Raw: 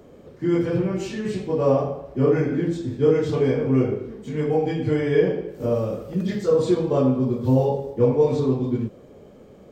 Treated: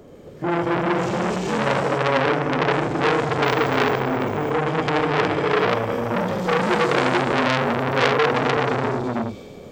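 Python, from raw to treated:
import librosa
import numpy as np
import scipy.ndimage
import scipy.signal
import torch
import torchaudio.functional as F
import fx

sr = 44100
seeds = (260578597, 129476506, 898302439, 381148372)

p1 = fx.highpass(x, sr, hz=100.0, slope=24, at=(7.32, 8.57))
p2 = p1 + fx.echo_wet_highpass(p1, sr, ms=78, feedback_pct=79, hz=2300.0, wet_db=-3, dry=0)
p3 = fx.rev_gated(p2, sr, seeds[0], gate_ms=480, shape='rising', drr_db=-2.5)
p4 = fx.resample_bad(p3, sr, factor=2, down='filtered', up='hold', at=(3.44, 4.51))
p5 = fx.transformer_sat(p4, sr, knee_hz=2800.0)
y = p5 * librosa.db_to_amplitude(3.0)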